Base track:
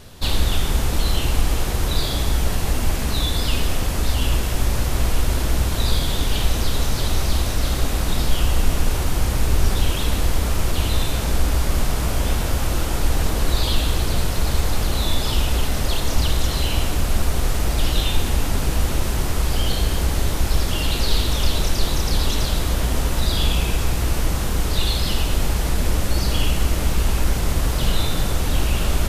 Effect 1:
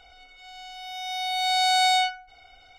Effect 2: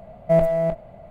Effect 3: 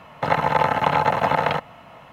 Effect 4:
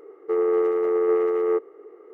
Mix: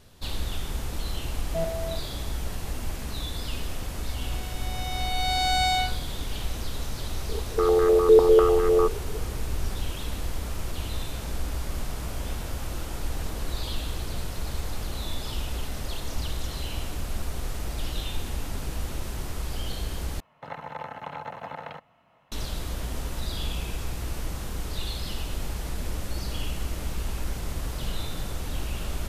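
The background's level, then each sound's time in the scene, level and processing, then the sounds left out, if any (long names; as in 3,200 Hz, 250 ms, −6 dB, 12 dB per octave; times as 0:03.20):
base track −11.5 dB
0:01.25: mix in 2 −12.5 dB
0:03.79: mix in 1 −3.5 dB
0:07.29: mix in 4 −1.5 dB + low-pass on a step sequencer 10 Hz 450–1,600 Hz
0:20.20: overwrite with 3 −18 dB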